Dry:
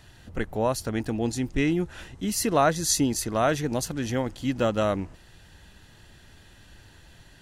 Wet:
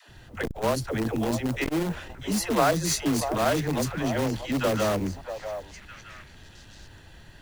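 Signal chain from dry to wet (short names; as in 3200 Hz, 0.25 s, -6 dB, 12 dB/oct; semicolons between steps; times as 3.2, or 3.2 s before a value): high shelf 5600 Hz -8 dB; dispersion lows, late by 93 ms, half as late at 360 Hz; in parallel at -7 dB: wrapped overs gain 21.5 dB; on the sum: delay with a stepping band-pass 0.638 s, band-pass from 740 Hz, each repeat 1.4 oct, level -7.5 dB; modulation noise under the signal 27 dB; core saturation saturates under 540 Hz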